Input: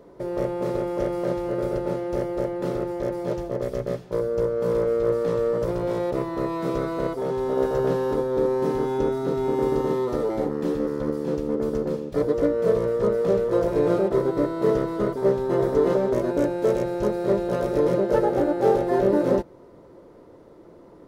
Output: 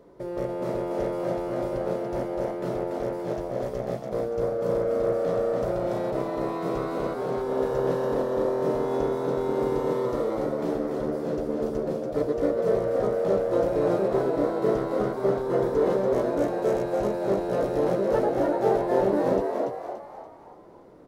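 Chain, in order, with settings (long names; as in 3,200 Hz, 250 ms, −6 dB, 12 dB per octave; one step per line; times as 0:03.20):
echo with shifted repeats 287 ms, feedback 43%, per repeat +88 Hz, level −4 dB
level −4 dB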